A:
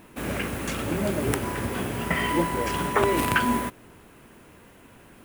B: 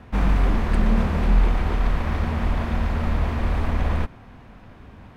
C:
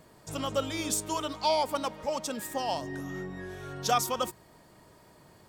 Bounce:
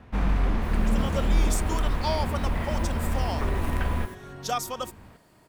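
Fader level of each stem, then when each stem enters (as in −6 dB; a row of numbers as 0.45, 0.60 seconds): −14.5, −4.5, −2.5 decibels; 0.45, 0.00, 0.60 seconds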